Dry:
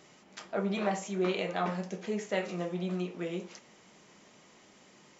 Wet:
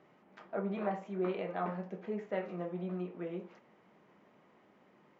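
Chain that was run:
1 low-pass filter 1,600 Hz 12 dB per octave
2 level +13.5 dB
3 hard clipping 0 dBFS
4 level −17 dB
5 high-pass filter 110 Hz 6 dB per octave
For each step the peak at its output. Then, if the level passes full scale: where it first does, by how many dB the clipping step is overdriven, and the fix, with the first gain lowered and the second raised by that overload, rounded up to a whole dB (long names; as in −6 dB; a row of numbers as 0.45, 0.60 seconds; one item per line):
−17.5, −4.0, −4.0, −21.0, −21.0 dBFS
no step passes full scale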